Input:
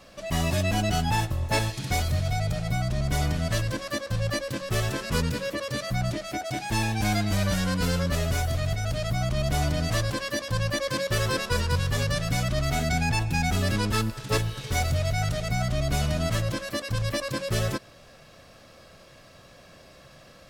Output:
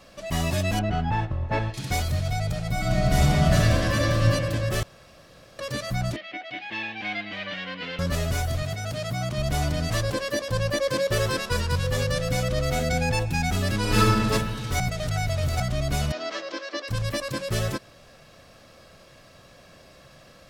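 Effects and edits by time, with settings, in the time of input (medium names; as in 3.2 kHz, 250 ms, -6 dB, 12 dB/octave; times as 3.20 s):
0.79–1.74 s: low-pass 2.1 kHz
2.70–4.26 s: reverb throw, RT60 2.8 s, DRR -5 dB
4.83–5.59 s: room tone
6.16–7.99 s: cabinet simulation 400–3400 Hz, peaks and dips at 420 Hz -8 dB, 640 Hz -6 dB, 910 Hz -8 dB, 1.4 kHz -7 dB, 2 kHz +5 dB, 3 kHz +5 dB
8.62–9.38 s: high-pass 110 Hz
10.03–11.27 s: peaking EQ 490 Hz +6.5 dB
11.83–13.24 s: whistle 510 Hz -29 dBFS
13.80–14.28 s: reverb throw, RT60 1.9 s, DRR -6 dB
14.80–15.60 s: reverse
16.12–16.88 s: elliptic band-pass 320–5500 Hz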